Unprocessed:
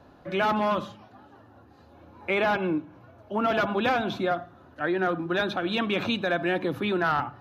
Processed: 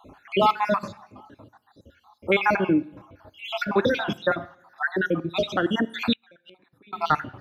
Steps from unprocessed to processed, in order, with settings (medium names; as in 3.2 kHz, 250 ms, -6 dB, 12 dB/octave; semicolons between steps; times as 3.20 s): random holes in the spectrogram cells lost 63%; band-stop 710 Hz, Q 12; two-slope reverb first 0.75 s, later 2.4 s, from -25 dB, DRR 18.5 dB; 6.13–6.93 s: inverted gate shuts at -32 dBFS, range -31 dB; trim +7 dB